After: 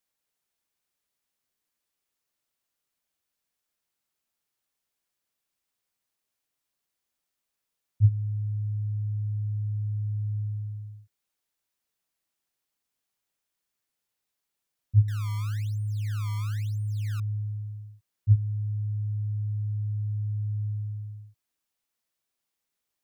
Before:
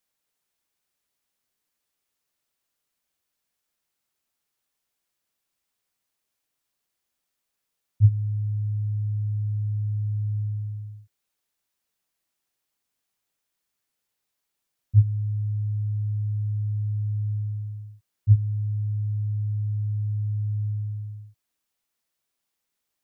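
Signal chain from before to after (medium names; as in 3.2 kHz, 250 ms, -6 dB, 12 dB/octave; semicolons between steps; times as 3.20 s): 15.08–17.20 s: decimation with a swept rate 23×, swing 160% 1 Hz; trim -3 dB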